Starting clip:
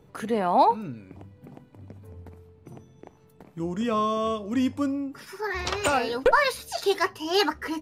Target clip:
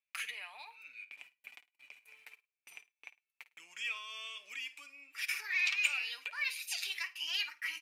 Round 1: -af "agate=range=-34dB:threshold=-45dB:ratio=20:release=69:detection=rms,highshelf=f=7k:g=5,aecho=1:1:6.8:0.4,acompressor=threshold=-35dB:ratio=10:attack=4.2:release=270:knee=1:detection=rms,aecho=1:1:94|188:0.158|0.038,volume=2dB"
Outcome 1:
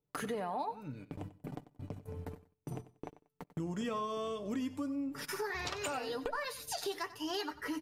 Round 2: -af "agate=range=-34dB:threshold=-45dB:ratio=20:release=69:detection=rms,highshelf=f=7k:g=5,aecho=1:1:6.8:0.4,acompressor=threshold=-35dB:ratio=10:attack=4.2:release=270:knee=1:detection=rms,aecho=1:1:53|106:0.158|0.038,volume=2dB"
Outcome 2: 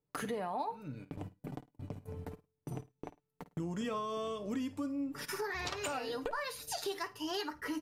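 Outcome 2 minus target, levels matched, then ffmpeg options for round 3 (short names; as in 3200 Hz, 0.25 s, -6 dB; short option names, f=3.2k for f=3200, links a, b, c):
2000 Hz band -5.0 dB
-af "agate=range=-34dB:threshold=-45dB:ratio=20:release=69:detection=rms,highshelf=f=7k:g=5,aecho=1:1:6.8:0.4,acompressor=threshold=-35dB:ratio=10:attack=4.2:release=270:knee=1:detection=rms,highpass=f=2.4k:t=q:w=8.4,aecho=1:1:53|106:0.158|0.038,volume=2dB"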